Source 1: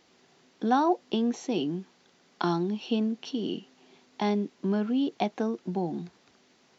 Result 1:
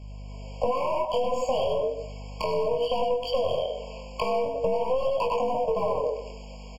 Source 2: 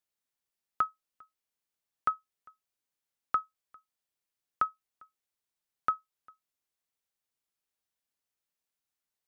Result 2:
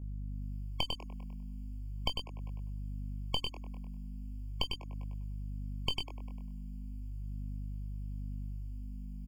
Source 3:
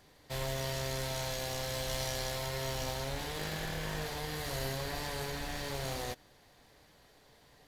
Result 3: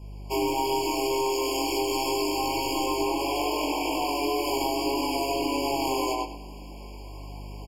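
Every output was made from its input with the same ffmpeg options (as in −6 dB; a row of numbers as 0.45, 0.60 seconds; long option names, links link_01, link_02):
-filter_complex "[0:a]asplit=2[link_01][link_02];[link_02]aeval=exprs='sgn(val(0))*max(abs(val(0))-0.00944,0)':channel_layout=same,volume=-8dB[link_03];[link_01][link_03]amix=inputs=2:normalize=0,lowshelf=frequency=130:gain=4,asplit=2[link_04][link_05];[link_05]adelay=99,lowpass=frequency=4700:poles=1,volume=-4dB,asplit=2[link_06][link_07];[link_07]adelay=99,lowpass=frequency=4700:poles=1,volume=0.28,asplit=2[link_08][link_09];[link_09]adelay=99,lowpass=frequency=4700:poles=1,volume=0.28,asplit=2[link_10][link_11];[link_11]adelay=99,lowpass=frequency=4700:poles=1,volume=0.28[link_12];[link_04][link_06][link_08][link_10][link_12]amix=inputs=5:normalize=0,alimiter=limit=-18.5dB:level=0:latency=1:release=19,afreqshift=270,dynaudnorm=framelen=240:gausssize=3:maxgain=9dB,aeval=exprs='val(0)+0.00501*(sin(2*PI*50*n/s)+sin(2*PI*2*50*n/s)/2+sin(2*PI*3*50*n/s)/3+sin(2*PI*4*50*n/s)/4+sin(2*PI*5*50*n/s)/5)':channel_layout=same,aeval=exprs='clip(val(0),-1,0.0944)':channel_layout=same,flanger=delay=18.5:depth=6.3:speed=0.38,equalizer=frequency=330:width_type=o:width=0.92:gain=-2.5,acompressor=threshold=-31dB:ratio=6,afftfilt=real='re*eq(mod(floor(b*sr/1024/1100),2),0)':imag='im*eq(mod(floor(b*sr/1024/1100),2),0)':win_size=1024:overlap=0.75,volume=8.5dB"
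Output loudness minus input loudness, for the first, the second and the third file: +2.0, −7.0, +10.0 LU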